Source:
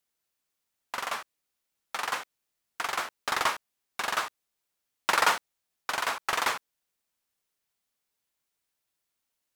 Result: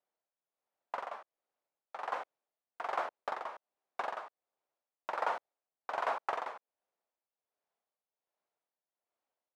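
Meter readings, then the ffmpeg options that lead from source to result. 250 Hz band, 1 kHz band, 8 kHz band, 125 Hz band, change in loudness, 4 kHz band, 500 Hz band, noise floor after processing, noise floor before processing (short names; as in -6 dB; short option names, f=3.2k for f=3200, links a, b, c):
-11.0 dB, -6.5 dB, under -25 dB, under -15 dB, -9.0 dB, -20.5 dB, -2.5 dB, under -85 dBFS, -83 dBFS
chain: -af "acompressor=threshold=-26dB:ratio=10,bandpass=f=650:t=q:w=1.7:csg=0,tremolo=f=1.3:d=0.7,volume=6.5dB"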